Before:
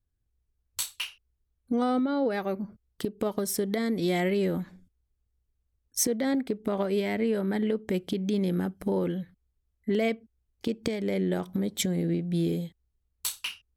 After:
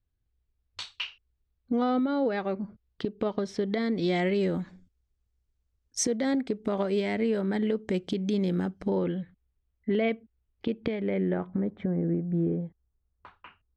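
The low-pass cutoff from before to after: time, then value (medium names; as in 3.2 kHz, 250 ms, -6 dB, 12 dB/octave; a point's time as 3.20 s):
low-pass 24 dB/octave
3.67 s 4.5 kHz
4.53 s 7.5 kHz
8.71 s 7.5 kHz
9.16 s 3.4 kHz
10.81 s 3.4 kHz
11.89 s 1.5 kHz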